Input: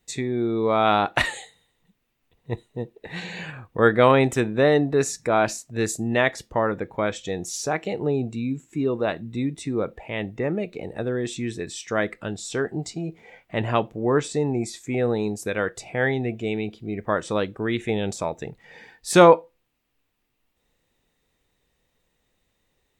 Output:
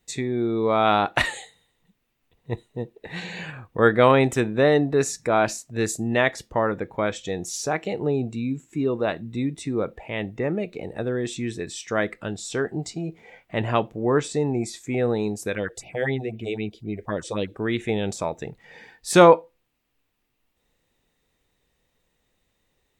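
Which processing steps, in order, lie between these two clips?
0:15.55–0:17.55: all-pass phaser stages 4, 3.9 Hz, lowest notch 150–1,500 Hz

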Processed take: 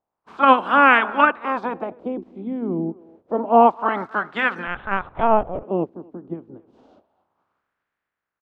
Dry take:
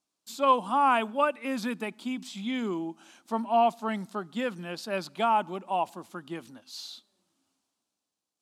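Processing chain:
ceiling on every frequency bin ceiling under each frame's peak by 22 dB
far-end echo of a speakerphone 260 ms, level −22 dB
0:04.67–0:05.63: linear-prediction vocoder at 8 kHz pitch kept
auto-filter low-pass sine 0.28 Hz 320–1,700 Hz
level +7 dB

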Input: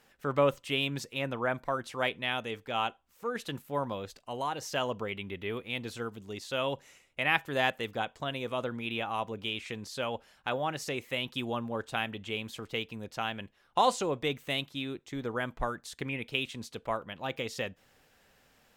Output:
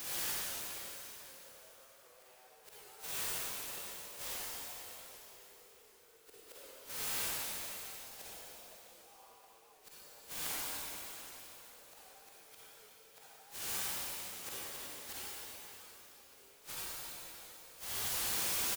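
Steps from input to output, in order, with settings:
running median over 15 samples
gain into a clipping stage and back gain 35 dB
high-pass filter 480 Hz 24 dB per octave
single-tap delay 147 ms −22 dB
bit-depth reduction 8 bits, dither triangular
harmonic and percussive parts rebalanced harmonic +9 dB
gate with flip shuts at −34 dBFS, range −35 dB
convolution reverb RT60 3.7 s, pre-delay 38 ms, DRR −9.5 dB
wow of a warped record 78 rpm, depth 100 cents
level −2 dB

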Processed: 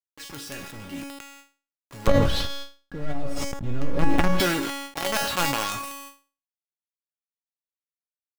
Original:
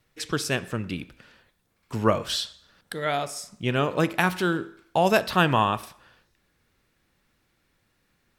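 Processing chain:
bass and treble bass +1 dB, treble −5 dB
log-companded quantiser 2 bits
tuned comb filter 280 Hz, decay 0.34 s, harmonics all, mix 90%
0:02.07–0:04.40: spectral tilt −4.5 dB per octave
level that may fall only so fast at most 36 dB per second
level +2 dB

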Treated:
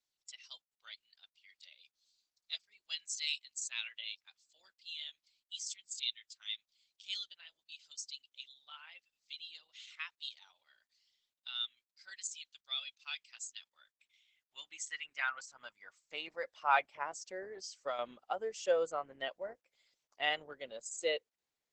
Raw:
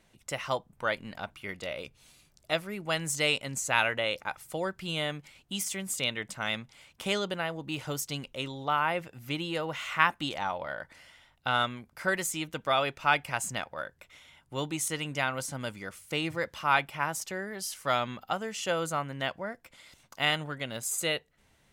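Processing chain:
spectral dynamics exaggerated over time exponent 1.5
0:17.49–0:17.99: downward compressor 16 to 1, threshold −33 dBFS, peak gain reduction 9 dB
0:20.52–0:21.08: low-shelf EQ 96 Hz −5.5 dB
high-pass filter sweep 4,000 Hz → 470 Hz, 0:13.54–0:17.02
level −4.5 dB
Opus 10 kbit/s 48,000 Hz

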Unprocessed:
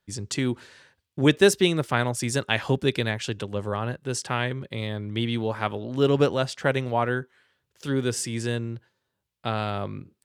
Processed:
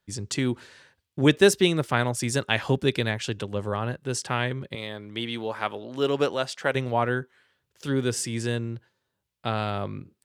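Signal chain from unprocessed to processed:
0:04.75–0:06.75: high-pass filter 430 Hz 6 dB per octave

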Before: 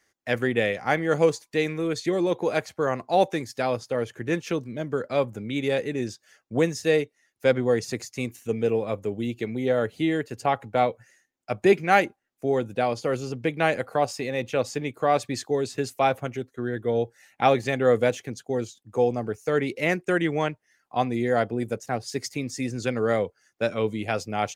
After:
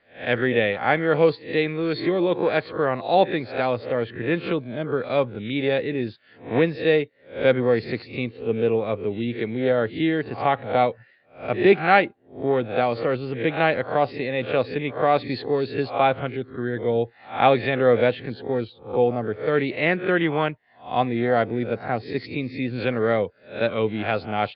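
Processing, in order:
peak hold with a rise ahead of every peak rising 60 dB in 0.36 s
Butterworth low-pass 4,400 Hz 96 dB per octave
level +2 dB

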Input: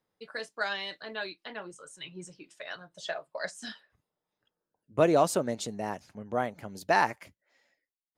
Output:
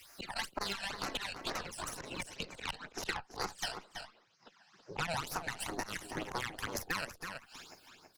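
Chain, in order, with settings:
0:02.36–0:05.14: elliptic band-pass filter 220–5,600 Hz, stop band 40 dB
gate on every frequency bin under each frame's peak −15 dB weak
parametric band 1,200 Hz +3 dB 1.9 octaves
volume swells 149 ms
downward compressor 8 to 1, threshold −52 dBFS, peak gain reduction 23 dB
harmonic generator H 5 −7 dB, 6 −22 dB, 7 −9 dB, 8 −14 dB, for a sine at −38 dBFS
all-pass phaser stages 12, 2.1 Hz, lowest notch 350–3,400 Hz
slap from a distant wall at 56 metres, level −11 dB
multiband upward and downward compressor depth 70%
level +18 dB

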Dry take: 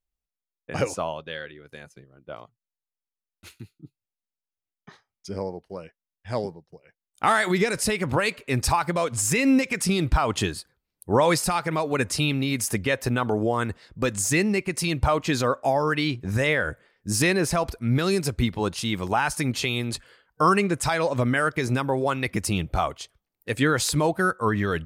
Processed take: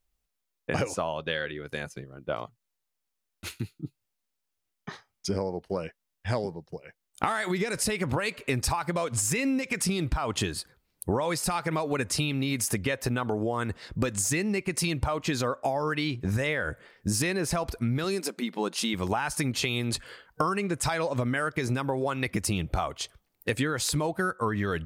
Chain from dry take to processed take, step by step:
downward compressor 12 to 1, threshold −33 dBFS, peak gain reduction 18.5 dB
0:18.04–0:18.94: linear-phase brick-wall high-pass 180 Hz
level +8.5 dB

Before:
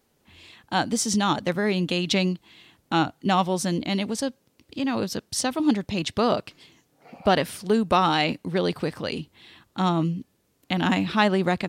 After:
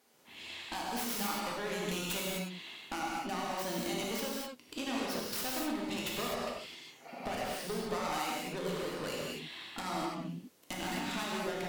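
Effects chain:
stylus tracing distortion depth 0.4 ms
high-pass filter 520 Hz 6 dB per octave
downward compressor 5 to 1, threshold −37 dBFS, peak gain reduction 18.5 dB
asymmetric clip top −39 dBFS
reverb whose tail is shaped and stops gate 280 ms flat, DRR −4.5 dB

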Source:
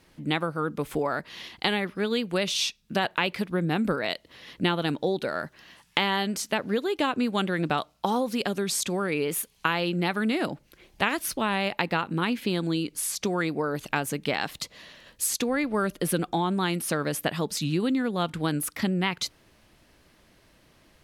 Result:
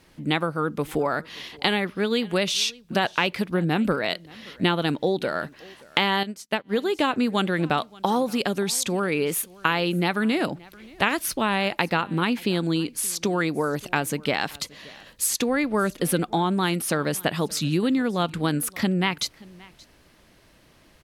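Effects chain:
on a send: single-tap delay 576 ms −23.5 dB
0:06.23–0:06.76: on the sum: expander for the loud parts 2.5 to 1, over −43 dBFS
level +3 dB

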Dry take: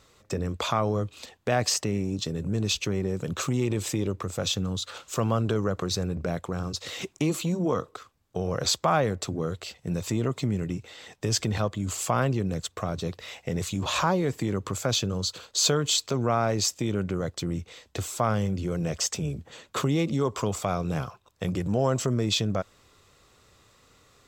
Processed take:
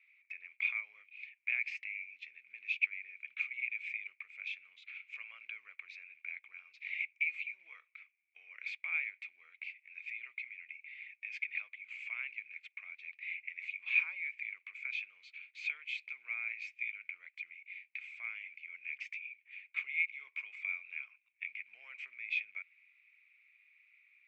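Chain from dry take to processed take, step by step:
floating-point word with a short mantissa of 4 bits
flat-topped band-pass 2,300 Hz, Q 7.8
level +10.5 dB

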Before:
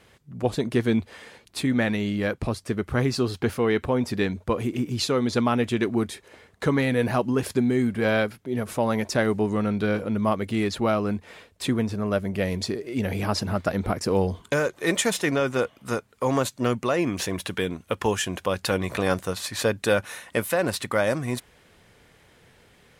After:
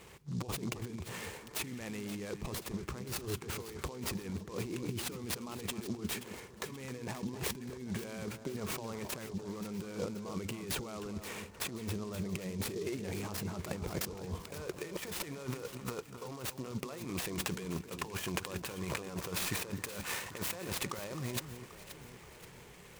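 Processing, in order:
EQ curve with evenly spaced ripples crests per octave 0.75, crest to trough 6 dB
compressor whose output falls as the input rises −34 dBFS, ratio −1
on a send: delay that swaps between a low-pass and a high-pass 264 ms, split 1,600 Hz, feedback 68%, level −9 dB
on the sum: short delay modulated by noise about 4,900 Hz, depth 0.048 ms
level −7 dB

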